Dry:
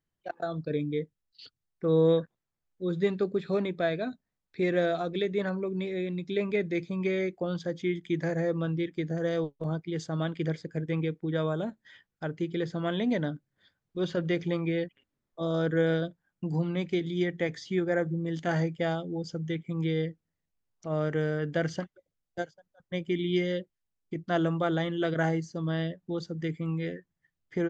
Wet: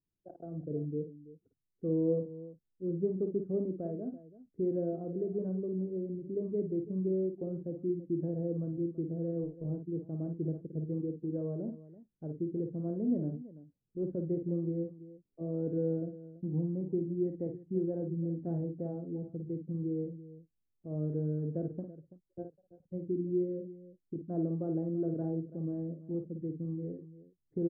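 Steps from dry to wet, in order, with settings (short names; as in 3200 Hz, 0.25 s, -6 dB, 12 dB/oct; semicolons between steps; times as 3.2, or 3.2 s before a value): ladder low-pass 520 Hz, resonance 20%; tapped delay 53/333 ms -6.5/-16 dB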